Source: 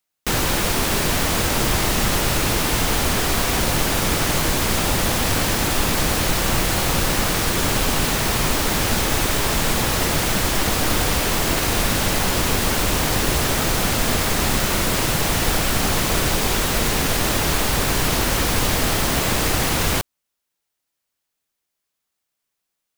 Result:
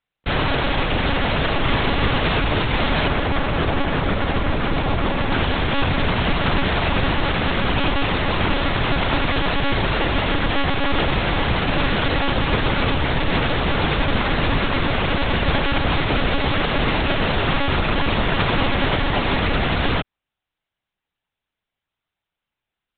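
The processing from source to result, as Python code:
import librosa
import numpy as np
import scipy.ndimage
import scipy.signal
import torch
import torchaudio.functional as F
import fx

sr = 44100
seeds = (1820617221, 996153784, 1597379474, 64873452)

y = fx.high_shelf(x, sr, hz=2400.0, db=-7.5, at=(3.07, 5.33))
y = fx.lpc_monotone(y, sr, seeds[0], pitch_hz=280.0, order=10)
y = F.gain(torch.from_numpy(y), 1.5).numpy()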